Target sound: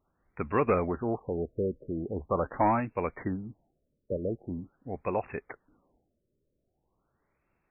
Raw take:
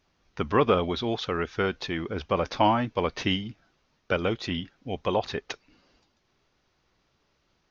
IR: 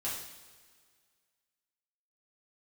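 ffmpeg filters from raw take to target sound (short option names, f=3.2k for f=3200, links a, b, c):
-filter_complex "[0:a]asettb=1/sr,asplit=3[a][b][c];[a]atrim=end=0.684[d];[b]atrim=start=0.68:end=2.8,asetpts=PTS-STARTPTS,afade=t=in:d=0.004:c=qsin,afade=t=out:st=2.116:d=0.004:c=qsin,aeval=exprs='0.355*(cos(1*acos(clip(val(0)/0.355,-1,1)))-cos(1*PI/2))+0.0501*(cos(5*acos(clip(val(0)/0.355,-1,1)))-cos(5*PI/2))+0.0178*(cos(7*acos(clip(val(0)/0.355,-1,1)))-cos(7*PI/2))':c=same[e];[c]atrim=start=2.796[f];[d][e]acrossfade=d=0.004:c1=hsin:c2=qsin[g];[g][f]acrossfade=d=0.004:c1=qsin:c2=hsin,afftfilt=real='re*lt(b*sr/1024,600*pow(2800/600,0.5+0.5*sin(2*PI*0.43*pts/sr)))':imag='im*lt(b*sr/1024,600*pow(2800/600,0.5+0.5*sin(2*PI*0.43*pts/sr)))':win_size=1024:overlap=0.75,volume=-4.5dB"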